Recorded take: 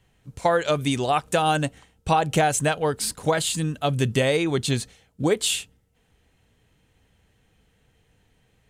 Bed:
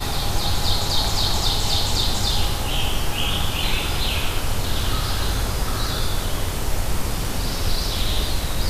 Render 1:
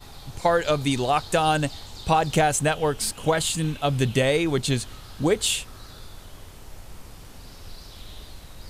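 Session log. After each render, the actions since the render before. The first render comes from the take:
mix in bed −19.5 dB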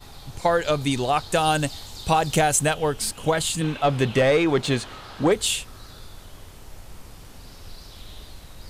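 0:01.35–0:02.74: high-shelf EQ 5,100 Hz +6.5 dB
0:03.61–0:05.32: mid-hump overdrive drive 17 dB, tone 1,400 Hz, clips at −8 dBFS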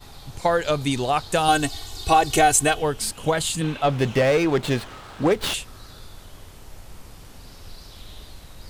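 0:01.48–0:02.82: comb filter 2.7 ms, depth 87%
0:03.91–0:05.54: windowed peak hold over 5 samples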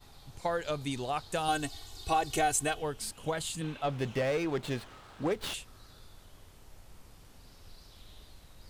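level −11.5 dB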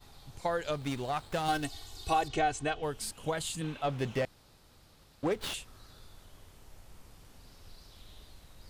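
0:00.73–0:01.65: windowed peak hold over 5 samples
0:02.28–0:02.83: high-frequency loss of the air 130 metres
0:04.25–0:05.23: fill with room tone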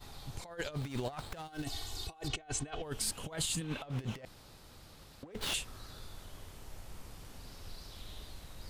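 compressor whose output falls as the input rises −38 dBFS, ratio −0.5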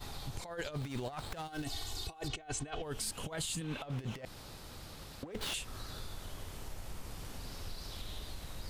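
in parallel at +0.5 dB: brickwall limiter −32.5 dBFS, peak gain reduction 10.5 dB
on the sum: downward compressor 2 to 1, threshold −40 dBFS, peak gain reduction 7 dB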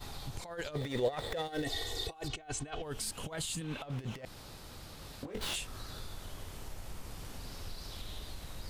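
0:00.75–0:02.11: hollow resonant body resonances 490/1,900/3,500 Hz, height 16 dB, ringing for 25 ms
0:05.02–0:05.67: double-tracking delay 21 ms −4.5 dB

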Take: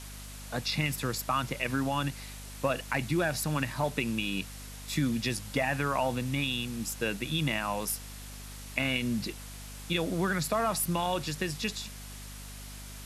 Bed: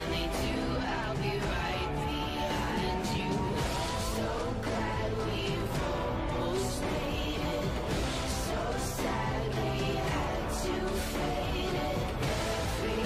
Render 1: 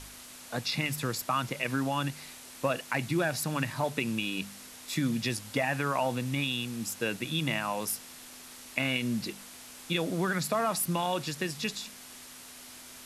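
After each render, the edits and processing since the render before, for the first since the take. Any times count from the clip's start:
hum removal 50 Hz, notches 4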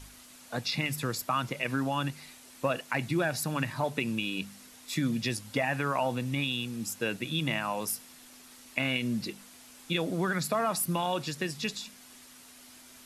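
broadband denoise 6 dB, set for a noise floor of −48 dBFS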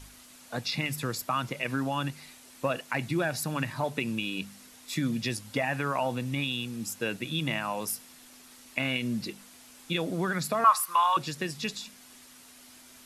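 0:10.64–0:11.17: high-pass with resonance 1,100 Hz, resonance Q 8.4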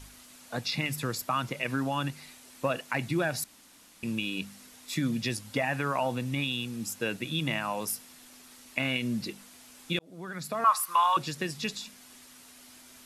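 0:03.44–0:04.03: fill with room tone
0:09.99–0:10.91: fade in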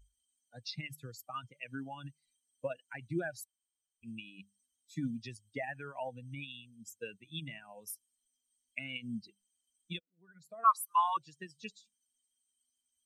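spectral dynamics exaggerated over time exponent 2
expander for the loud parts 1.5 to 1, over −43 dBFS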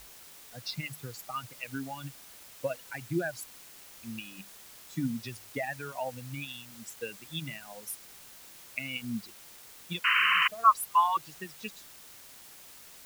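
0:10.04–0:10.48: sound drawn into the spectrogram noise 1,000–3,100 Hz −29 dBFS
in parallel at −3 dB: bit-depth reduction 8 bits, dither triangular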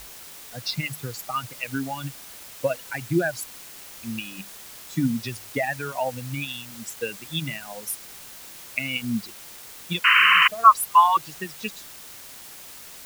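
level +8.5 dB
brickwall limiter −2 dBFS, peak gain reduction 1.5 dB

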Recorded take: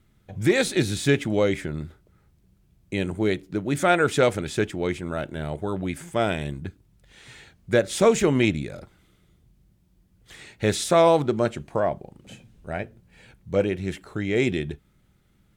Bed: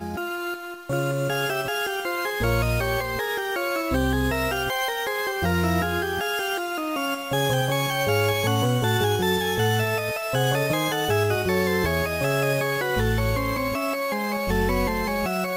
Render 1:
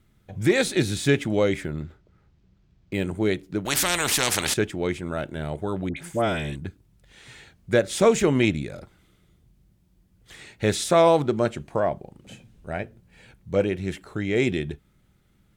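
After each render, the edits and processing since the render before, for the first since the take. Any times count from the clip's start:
0:01.63–0:03.04: linearly interpolated sample-rate reduction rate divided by 4×
0:03.65–0:04.54: every bin compressed towards the loudest bin 4 to 1
0:05.89–0:06.56: all-pass dispersion highs, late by 77 ms, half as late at 1,300 Hz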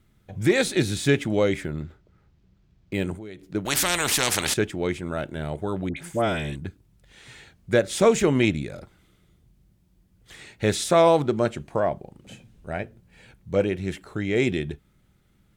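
0:03.15–0:03.55: downward compressor 5 to 1, threshold −37 dBFS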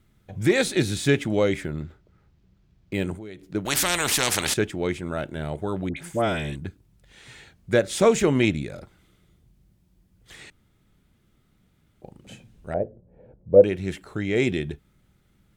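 0:10.50–0:12.02: fill with room tone
0:12.74–0:13.64: low-pass with resonance 550 Hz, resonance Q 3.5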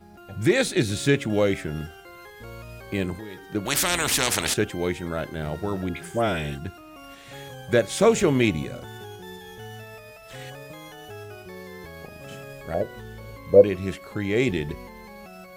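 mix in bed −18 dB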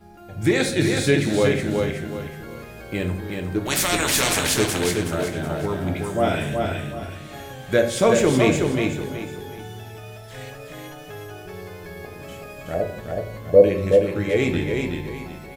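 repeating echo 372 ms, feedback 31%, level −4 dB
rectangular room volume 69 cubic metres, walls mixed, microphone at 0.46 metres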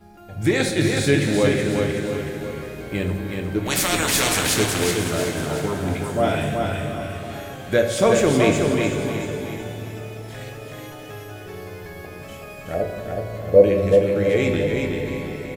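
single-tap delay 683 ms −13 dB
dense smooth reverb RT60 4.8 s, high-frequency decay 0.85×, DRR 7.5 dB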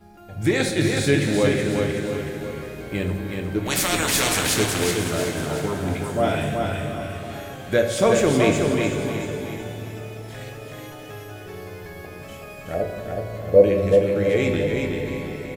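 level −1 dB

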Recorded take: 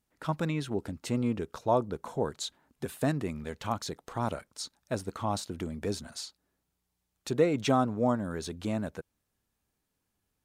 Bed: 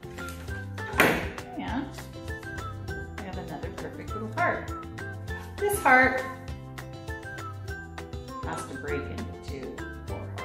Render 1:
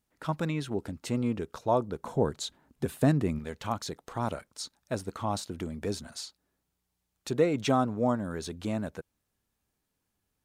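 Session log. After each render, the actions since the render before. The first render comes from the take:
0:02.03–0:03.39: low-shelf EQ 460 Hz +7 dB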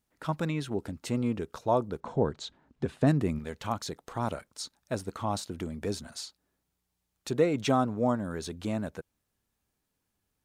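0:02.00–0:03.07: high-frequency loss of the air 110 metres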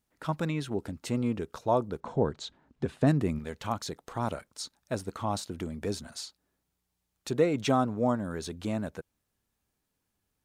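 no processing that can be heard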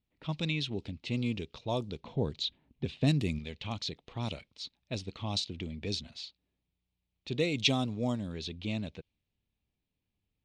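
low-pass that shuts in the quiet parts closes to 1,500 Hz, open at −21.5 dBFS
drawn EQ curve 110 Hz 0 dB, 1,100 Hz −11 dB, 1,500 Hz −15 dB, 2,400 Hz +7 dB, 3,800 Hz +12 dB, 12,000 Hz −3 dB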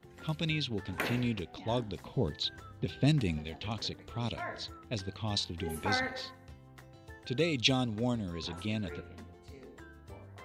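mix in bed −14 dB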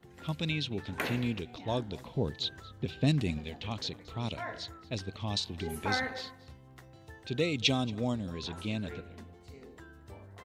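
single-tap delay 228 ms −21.5 dB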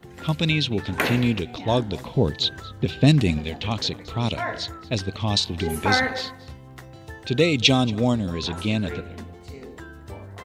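level +11 dB
brickwall limiter −2 dBFS, peak gain reduction 2.5 dB

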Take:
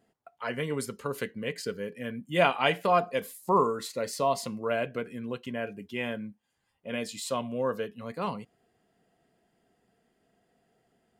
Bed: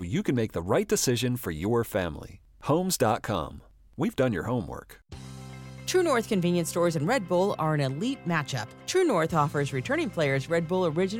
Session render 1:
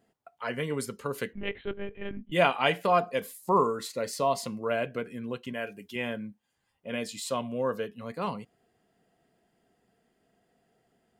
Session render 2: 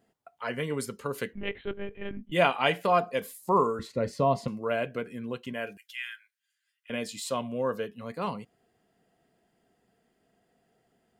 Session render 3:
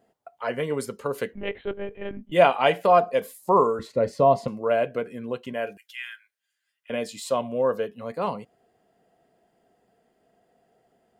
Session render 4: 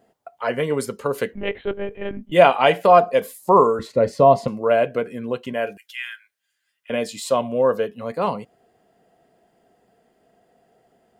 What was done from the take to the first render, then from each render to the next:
0:01.33–0:02.32: one-pitch LPC vocoder at 8 kHz 200 Hz; 0:05.53–0:05.96: spectral tilt +2 dB per octave
0:03.79–0:04.48: RIAA equalisation playback; 0:05.77–0:06.90: elliptic high-pass filter 1,500 Hz, stop band 70 dB
parametric band 620 Hz +8 dB 1.5 octaves
level +5 dB; brickwall limiter −1 dBFS, peak gain reduction 1.5 dB

